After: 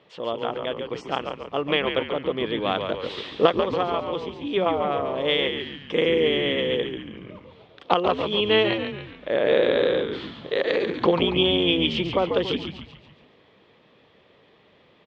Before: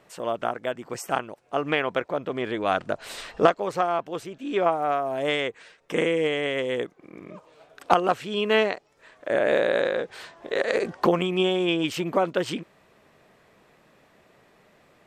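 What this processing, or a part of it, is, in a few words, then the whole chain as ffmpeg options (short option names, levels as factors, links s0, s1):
frequency-shifting delay pedal into a guitar cabinet: -filter_complex "[0:a]asplit=7[s0][s1][s2][s3][s4][s5][s6];[s1]adelay=140,afreqshift=-99,volume=0.473[s7];[s2]adelay=280,afreqshift=-198,volume=0.237[s8];[s3]adelay=420,afreqshift=-297,volume=0.119[s9];[s4]adelay=560,afreqshift=-396,volume=0.0589[s10];[s5]adelay=700,afreqshift=-495,volume=0.0295[s11];[s6]adelay=840,afreqshift=-594,volume=0.0148[s12];[s0][s7][s8][s9][s10][s11][s12]amix=inputs=7:normalize=0,highpass=78,equalizer=f=480:t=q:w=4:g=4,equalizer=f=680:t=q:w=4:g=-4,equalizer=f=1500:t=q:w=4:g=-6,equalizer=f=3300:t=q:w=4:g=9,lowpass=f=4500:w=0.5412,lowpass=f=4500:w=1.3066"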